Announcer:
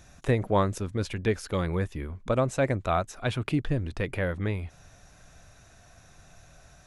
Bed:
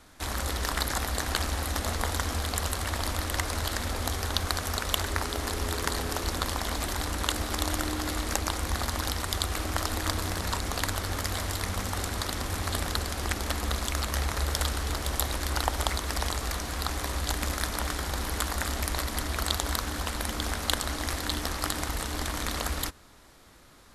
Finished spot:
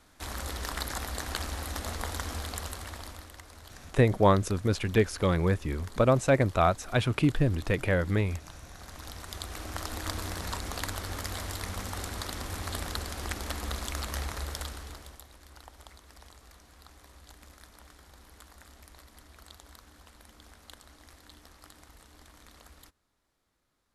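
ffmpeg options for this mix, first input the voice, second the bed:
-filter_complex "[0:a]adelay=3700,volume=2.5dB[a];[1:a]volume=9dB,afade=t=out:st=2.39:d=0.97:silence=0.199526,afade=t=in:st=8.76:d=1.44:silence=0.188365,afade=t=out:st=14.16:d=1.06:silence=0.125893[b];[a][b]amix=inputs=2:normalize=0"

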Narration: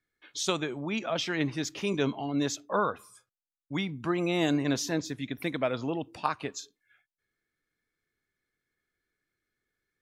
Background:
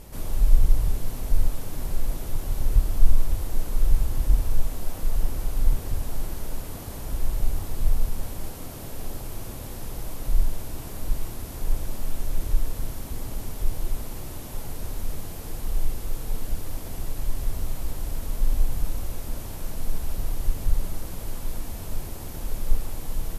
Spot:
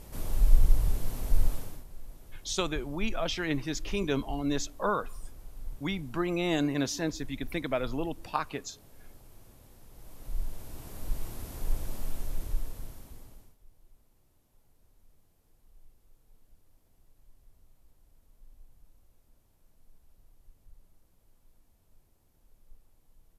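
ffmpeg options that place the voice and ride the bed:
-filter_complex "[0:a]adelay=2100,volume=-1.5dB[a];[1:a]volume=10.5dB,afade=t=out:st=1.53:d=0.31:silence=0.158489,afade=t=in:st=9.9:d=1.49:silence=0.199526,afade=t=out:st=12.01:d=1.56:silence=0.0421697[b];[a][b]amix=inputs=2:normalize=0"

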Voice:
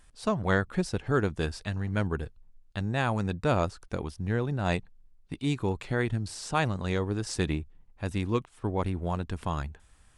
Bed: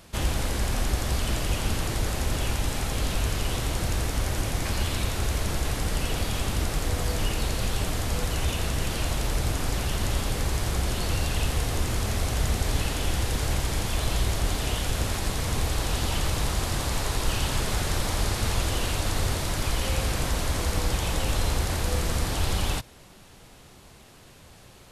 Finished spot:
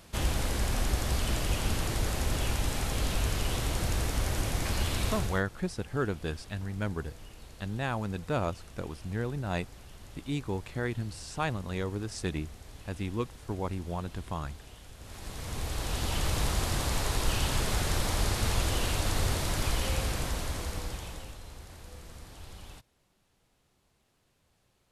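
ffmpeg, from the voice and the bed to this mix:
-filter_complex "[0:a]adelay=4850,volume=-4.5dB[a];[1:a]volume=17dB,afade=t=out:st=5.12:d=0.31:silence=0.105925,afade=t=in:st=14.99:d=1.41:silence=0.1,afade=t=out:st=19.66:d=1.72:silence=0.11885[b];[a][b]amix=inputs=2:normalize=0"

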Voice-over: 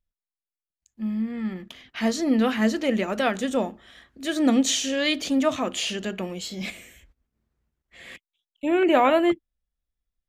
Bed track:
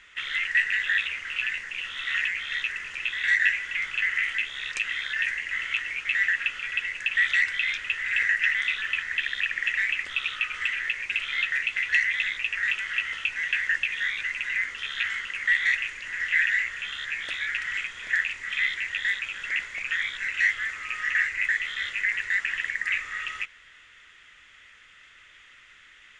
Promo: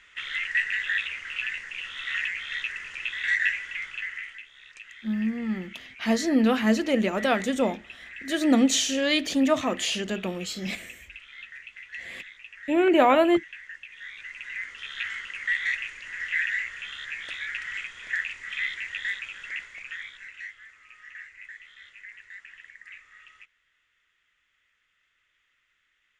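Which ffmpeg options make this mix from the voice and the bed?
-filter_complex "[0:a]adelay=4050,volume=0dB[a];[1:a]volume=10.5dB,afade=t=out:st=3.5:d=0.93:silence=0.188365,afade=t=in:st=13.89:d=1.19:silence=0.223872,afade=t=out:st=19.1:d=1.42:silence=0.177828[b];[a][b]amix=inputs=2:normalize=0"

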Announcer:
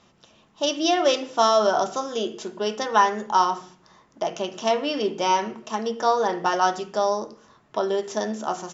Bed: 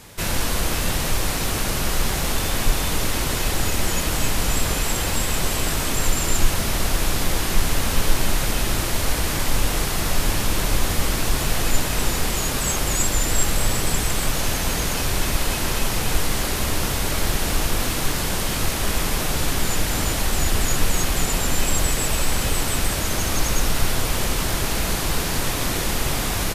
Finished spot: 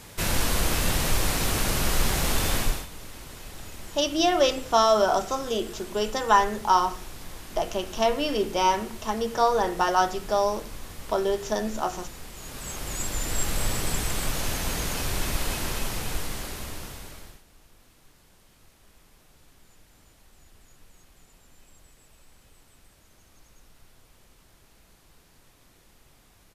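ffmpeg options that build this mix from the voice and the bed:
-filter_complex "[0:a]adelay=3350,volume=-1dB[a];[1:a]volume=11.5dB,afade=t=out:st=2.54:d=0.33:silence=0.133352,afade=t=in:st=12.34:d=1.28:silence=0.211349,afade=t=out:st=15.51:d=1.92:silence=0.0354813[b];[a][b]amix=inputs=2:normalize=0"

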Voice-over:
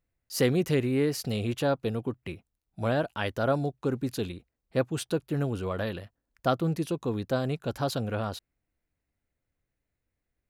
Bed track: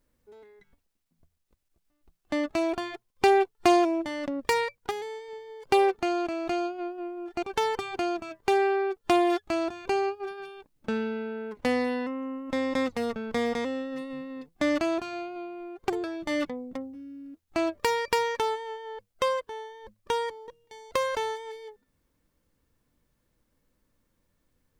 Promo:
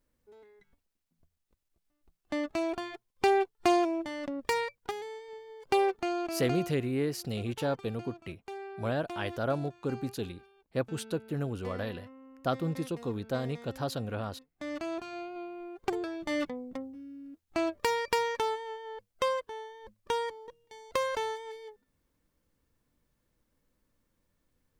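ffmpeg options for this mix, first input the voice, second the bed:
-filter_complex "[0:a]adelay=6000,volume=-4.5dB[a];[1:a]volume=11dB,afade=t=out:st=6.5:d=0.27:silence=0.199526,afade=t=in:st=14.52:d=0.85:silence=0.16788[b];[a][b]amix=inputs=2:normalize=0"

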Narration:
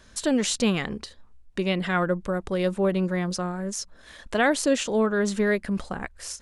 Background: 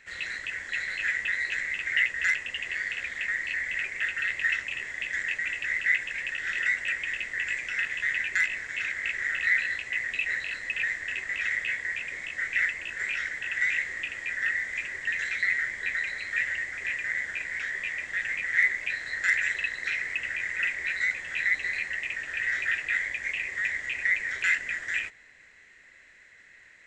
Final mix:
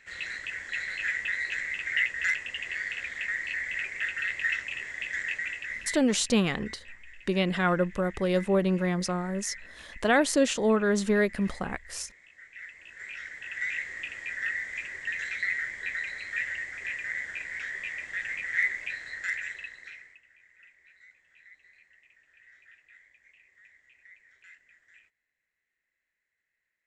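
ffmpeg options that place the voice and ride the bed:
-filter_complex "[0:a]adelay=5700,volume=-1dB[a];[1:a]volume=14.5dB,afade=t=out:st=5.38:d=0.66:silence=0.125893,afade=t=in:st=12.56:d=1.5:silence=0.149624,afade=t=out:st=18.74:d=1.47:silence=0.0530884[b];[a][b]amix=inputs=2:normalize=0"

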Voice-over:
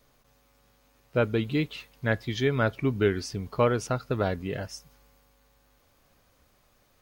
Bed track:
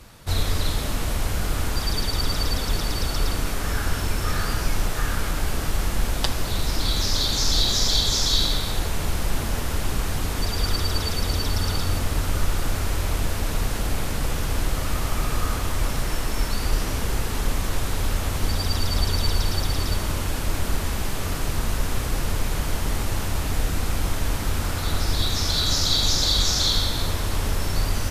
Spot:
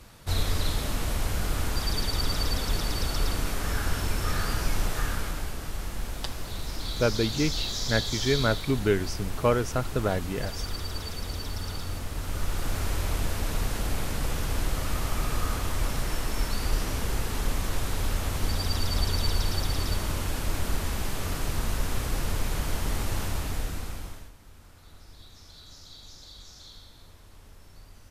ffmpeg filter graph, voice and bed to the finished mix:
-filter_complex "[0:a]adelay=5850,volume=0dB[a];[1:a]volume=2.5dB,afade=t=out:st=4.97:d=0.58:silence=0.473151,afade=t=in:st=12.14:d=0.69:silence=0.501187,afade=t=out:st=23.23:d=1.09:silence=0.0707946[b];[a][b]amix=inputs=2:normalize=0"

